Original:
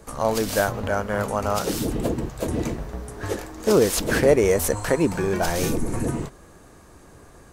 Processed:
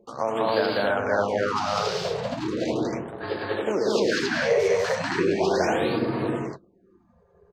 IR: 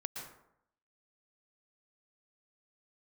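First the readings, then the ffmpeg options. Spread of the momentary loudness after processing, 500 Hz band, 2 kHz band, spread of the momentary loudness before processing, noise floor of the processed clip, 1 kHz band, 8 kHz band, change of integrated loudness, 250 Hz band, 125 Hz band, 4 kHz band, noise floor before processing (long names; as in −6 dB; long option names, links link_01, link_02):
7 LU, −1.0 dB, +1.5 dB, 12 LU, −61 dBFS, +1.5 dB, −10.5 dB, −1.5 dB, −2.5 dB, −7.0 dB, +1.5 dB, −49 dBFS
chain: -filter_complex "[0:a]highpass=frequency=95:width=0.5412,highpass=frequency=95:width=1.3066,acrossover=split=150|3400[link_01][link_02][link_03];[link_01]asoftclip=type=tanh:threshold=-33.5dB[link_04];[link_04][link_02][link_03]amix=inputs=3:normalize=0,highshelf=frequency=5700:gain=10,asplit=2[link_05][link_06];[1:a]atrim=start_sample=2205[link_07];[link_06][link_07]afir=irnorm=-1:irlink=0,volume=-15dB[link_08];[link_05][link_08]amix=inputs=2:normalize=0,anlmdn=2.51,flanger=delay=8.7:depth=3.5:regen=-47:speed=0.34:shape=sinusoidal,acompressor=threshold=-23dB:ratio=6,firequalizer=gain_entry='entry(130,0);entry(340,8);entry(4600,7);entry(10000,-28)':delay=0.05:min_phase=1,acompressor=mode=upward:threshold=-42dB:ratio=2.5,aecho=1:1:102|195.3|274.1:0.447|1|1,afftfilt=real='re*(1-between(b*sr/1024,250*pow(7200/250,0.5+0.5*sin(2*PI*0.37*pts/sr))/1.41,250*pow(7200/250,0.5+0.5*sin(2*PI*0.37*pts/sr))*1.41))':imag='im*(1-between(b*sr/1024,250*pow(7200/250,0.5+0.5*sin(2*PI*0.37*pts/sr))/1.41,250*pow(7200/250,0.5+0.5*sin(2*PI*0.37*pts/sr))*1.41))':win_size=1024:overlap=0.75,volume=-6dB"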